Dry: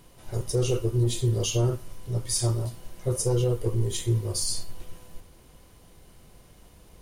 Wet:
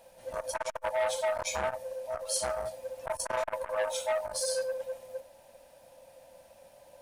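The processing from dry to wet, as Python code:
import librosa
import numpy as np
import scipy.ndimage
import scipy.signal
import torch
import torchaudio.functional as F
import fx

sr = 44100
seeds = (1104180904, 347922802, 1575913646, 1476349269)

y = fx.band_swap(x, sr, width_hz=500)
y = fx.transformer_sat(y, sr, knee_hz=1200.0)
y = F.gain(torch.from_numpy(y), -4.0).numpy()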